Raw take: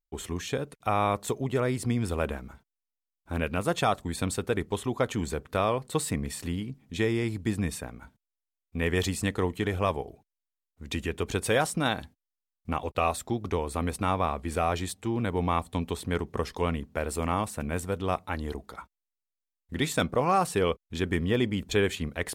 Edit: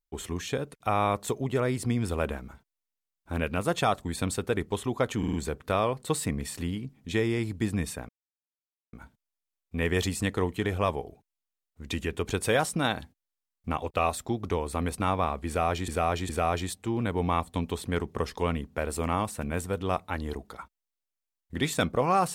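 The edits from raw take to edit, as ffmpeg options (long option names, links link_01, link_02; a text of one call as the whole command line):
ffmpeg -i in.wav -filter_complex "[0:a]asplit=7[link_01][link_02][link_03][link_04][link_05][link_06][link_07];[link_01]atrim=end=5.232[link_08];[link_02]atrim=start=5.178:end=5.232[link_09];[link_03]atrim=start=5.178:end=5.232[link_10];[link_04]atrim=start=5.178:end=7.94,asetpts=PTS-STARTPTS,afade=type=out:start_time=2.758:duration=0.004:curve=hsin,apad=pad_dur=0.84[link_11];[link_05]atrim=start=7.94:end=14.892,asetpts=PTS-STARTPTS,afade=type=in:duration=0.004:curve=hsin[link_12];[link_06]atrim=start=14.478:end=14.892[link_13];[link_07]atrim=start=14.478[link_14];[link_08][link_09]acrossfade=duration=0.004:curve1=hsin:curve2=hsin[link_15];[link_15][link_10]acrossfade=duration=0.004:curve1=hsin:curve2=hsin[link_16];[link_11][link_12]concat=n=2:v=0:a=1[link_17];[link_16][link_17]acrossfade=duration=0.004:curve1=hsin:curve2=hsin[link_18];[link_18][link_13]acrossfade=duration=0.004:curve1=hsin:curve2=hsin[link_19];[link_19][link_14]acrossfade=duration=0.004:curve1=hsin:curve2=hsin" out.wav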